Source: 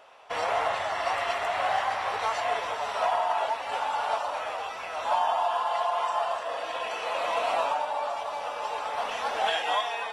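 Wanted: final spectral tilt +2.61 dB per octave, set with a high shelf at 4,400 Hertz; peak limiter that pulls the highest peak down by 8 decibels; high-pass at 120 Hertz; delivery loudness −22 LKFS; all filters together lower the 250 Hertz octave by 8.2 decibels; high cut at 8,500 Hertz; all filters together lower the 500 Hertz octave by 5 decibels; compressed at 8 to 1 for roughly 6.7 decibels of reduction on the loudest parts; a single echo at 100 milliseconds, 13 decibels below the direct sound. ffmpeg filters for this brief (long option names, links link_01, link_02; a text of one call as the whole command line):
ffmpeg -i in.wav -af "highpass=120,lowpass=8500,equalizer=frequency=250:width_type=o:gain=-8.5,equalizer=frequency=500:width_type=o:gain=-6,highshelf=frequency=4400:gain=-7.5,acompressor=threshold=-31dB:ratio=8,alimiter=level_in=6dB:limit=-24dB:level=0:latency=1,volume=-6dB,aecho=1:1:100:0.224,volume=16dB" out.wav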